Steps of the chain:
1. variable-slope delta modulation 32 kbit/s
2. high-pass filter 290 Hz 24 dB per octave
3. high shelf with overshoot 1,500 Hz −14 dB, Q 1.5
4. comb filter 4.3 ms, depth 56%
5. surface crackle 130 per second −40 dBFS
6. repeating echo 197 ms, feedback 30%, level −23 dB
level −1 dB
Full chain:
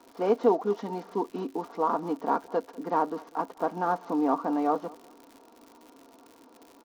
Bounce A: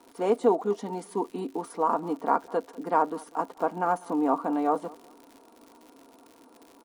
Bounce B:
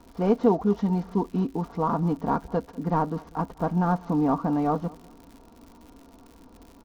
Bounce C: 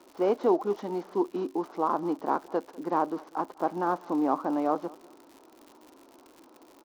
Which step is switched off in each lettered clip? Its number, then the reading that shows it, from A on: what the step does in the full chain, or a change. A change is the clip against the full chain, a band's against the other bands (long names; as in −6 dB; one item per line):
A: 1, 2 kHz band +1.5 dB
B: 2, 125 Hz band +17.0 dB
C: 4, 250 Hz band +1.5 dB